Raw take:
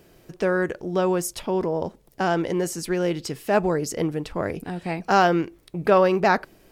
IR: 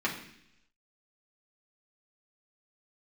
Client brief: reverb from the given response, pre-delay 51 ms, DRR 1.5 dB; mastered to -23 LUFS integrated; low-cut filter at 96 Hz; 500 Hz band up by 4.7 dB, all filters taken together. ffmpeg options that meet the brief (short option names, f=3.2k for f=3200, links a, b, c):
-filter_complex "[0:a]highpass=96,equalizer=f=500:t=o:g=6,asplit=2[a][b];[1:a]atrim=start_sample=2205,adelay=51[c];[b][c]afir=irnorm=-1:irlink=0,volume=-10.5dB[d];[a][d]amix=inputs=2:normalize=0,volume=-4.5dB"